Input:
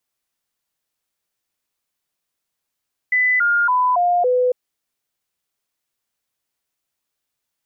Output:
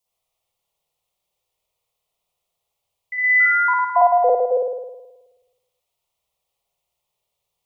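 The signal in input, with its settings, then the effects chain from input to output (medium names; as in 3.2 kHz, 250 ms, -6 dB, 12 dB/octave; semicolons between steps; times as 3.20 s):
stepped sine 2 kHz down, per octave 2, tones 5, 0.28 s, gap 0.00 s -13.5 dBFS
static phaser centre 660 Hz, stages 4; spring tank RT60 1.1 s, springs 53 ms, chirp 50 ms, DRR -8 dB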